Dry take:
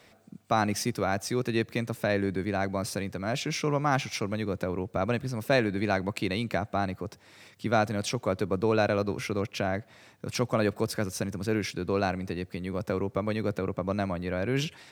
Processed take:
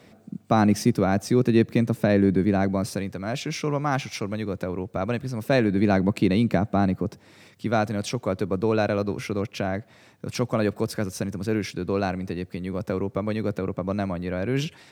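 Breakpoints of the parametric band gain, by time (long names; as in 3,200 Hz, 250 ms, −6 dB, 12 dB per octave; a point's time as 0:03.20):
parametric band 200 Hz 2.7 octaves
0:02.60 +11.5 dB
0:03.16 +2.5 dB
0:05.27 +2.5 dB
0:05.96 +12 dB
0:07.03 +12 dB
0:07.66 +4 dB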